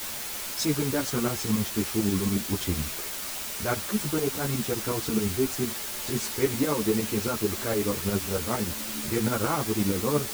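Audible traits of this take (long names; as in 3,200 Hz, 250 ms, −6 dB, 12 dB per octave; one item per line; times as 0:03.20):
tremolo saw up 11 Hz, depth 70%
a quantiser's noise floor 6 bits, dither triangular
a shimmering, thickened sound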